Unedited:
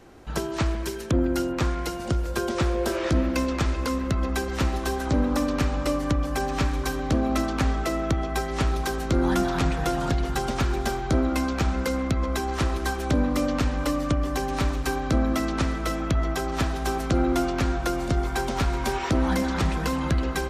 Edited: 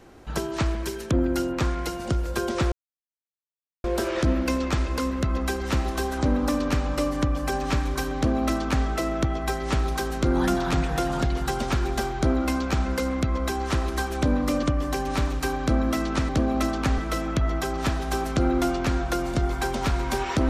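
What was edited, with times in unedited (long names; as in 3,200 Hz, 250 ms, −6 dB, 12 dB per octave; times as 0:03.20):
0:02.72: splice in silence 1.12 s
0:07.04–0:07.73: duplicate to 0:15.72
0:13.51–0:14.06: remove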